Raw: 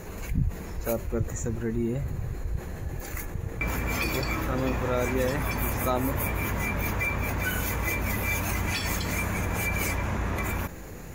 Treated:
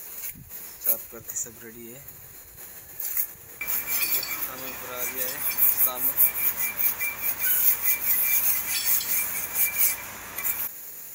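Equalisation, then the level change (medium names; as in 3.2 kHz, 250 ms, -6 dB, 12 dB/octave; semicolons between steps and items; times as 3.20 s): tilt EQ +4.5 dB/octave; treble shelf 8.8 kHz +8.5 dB; -7.5 dB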